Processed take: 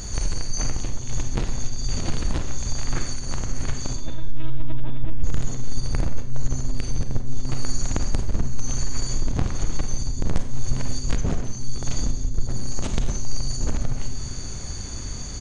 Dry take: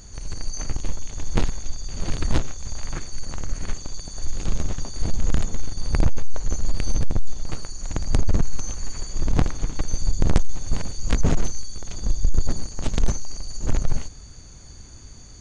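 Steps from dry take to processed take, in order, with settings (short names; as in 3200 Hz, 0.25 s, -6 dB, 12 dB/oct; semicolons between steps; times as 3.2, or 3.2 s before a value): in parallel at +1 dB: limiter -17.5 dBFS, peak gain reduction 8.5 dB; on the sum: compressor 6:1, threshold -23 dBFS, peak gain reduction 14 dB; 3.96–5.24 LPC vocoder at 8 kHz pitch kept; frequency-shifting echo 0.176 s, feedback 35%, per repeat -130 Hz, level -18 dB; on a send at -6.5 dB: reverb RT60 0.55 s, pre-delay 31 ms; 11.16–11.83 on the sum: mismatched tape noise reduction decoder only; gain +4 dB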